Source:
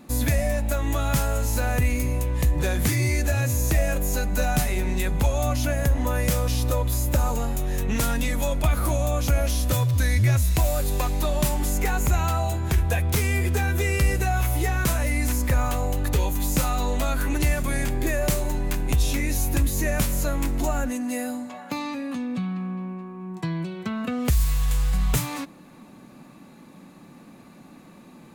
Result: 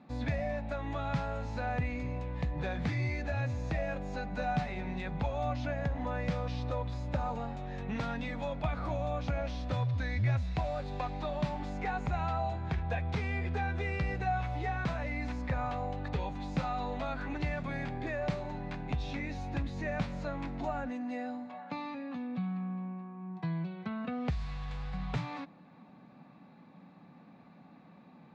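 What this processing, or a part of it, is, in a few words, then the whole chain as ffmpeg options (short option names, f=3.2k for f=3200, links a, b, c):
guitar cabinet: -af "highpass=79,equalizer=f=170:t=q:w=4:g=4,equalizer=f=350:t=q:w=4:g=-6,equalizer=f=770:t=q:w=4:g=6,equalizer=f=3k:t=q:w=4:g=-5,lowpass=f=3.9k:w=0.5412,lowpass=f=3.9k:w=1.3066,volume=-9dB"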